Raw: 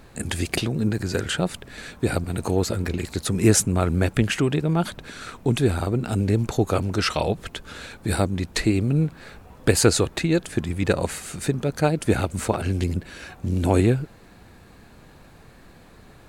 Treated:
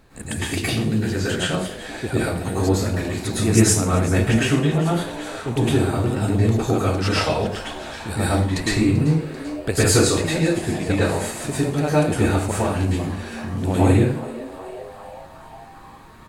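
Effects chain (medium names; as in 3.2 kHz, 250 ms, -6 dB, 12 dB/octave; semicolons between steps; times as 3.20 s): frequency-shifting echo 389 ms, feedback 63%, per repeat +140 Hz, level -16.5 dB; plate-style reverb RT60 0.52 s, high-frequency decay 0.9×, pre-delay 95 ms, DRR -8.5 dB; trim -6 dB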